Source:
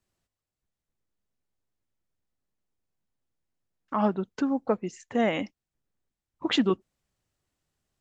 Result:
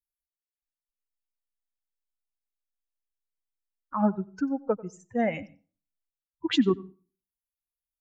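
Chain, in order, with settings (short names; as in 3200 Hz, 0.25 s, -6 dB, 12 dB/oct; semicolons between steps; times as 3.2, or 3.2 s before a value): per-bin expansion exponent 2; low shelf 350 Hz +5.5 dB; reverb, pre-delay 92 ms, DRR 20 dB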